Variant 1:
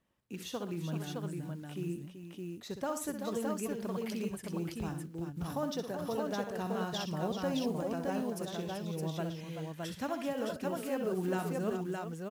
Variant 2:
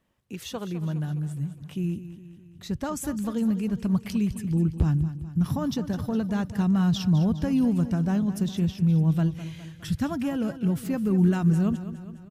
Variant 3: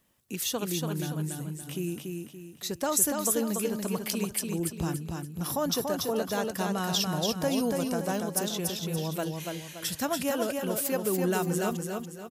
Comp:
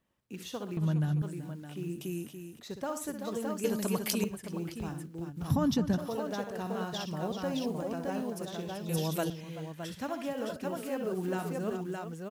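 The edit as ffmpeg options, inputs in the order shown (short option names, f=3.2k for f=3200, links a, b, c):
-filter_complex "[1:a]asplit=2[a][b];[2:a]asplit=3[c][d][e];[0:a]asplit=6[f][g][h][i][j][k];[f]atrim=end=0.772[l];[a]atrim=start=0.768:end=1.222[m];[g]atrim=start=1.218:end=2.012[n];[c]atrim=start=2.008:end=2.592[o];[h]atrim=start=2.588:end=3.642[p];[d]atrim=start=3.638:end=4.242[q];[i]atrim=start=4.238:end=5.502[r];[b]atrim=start=5.498:end=5.982[s];[j]atrim=start=5.978:end=8.892[t];[e]atrim=start=8.888:end=9.302[u];[k]atrim=start=9.298[v];[l][m]acrossfade=d=0.004:c1=hsin:c2=hsin[w];[w][n]acrossfade=d=0.004:c1=hsin:c2=hsin[x];[x][o]acrossfade=d=0.004:c1=hsin:c2=hsin[y];[y][p]acrossfade=d=0.004:c1=hsin:c2=hsin[z];[z][q]acrossfade=d=0.004:c1=hsin:c2=hsin[aa];[aa][r]acrossfade=d=0.004:c1=hsin:c2=hsin[ab];[ab][s]acrossfade=d=0.004:c1=hsin:c2=hsin[ac];[ac][t]acrossfade=d=0.004:c1=hsin:c2=hsin[ad];[ad][u]acrossfade=d=0.004:c1=hsin:c2=hsin[ae];[ae][v]acrossfade=d=0.004:c1=hsin:c2=hsin"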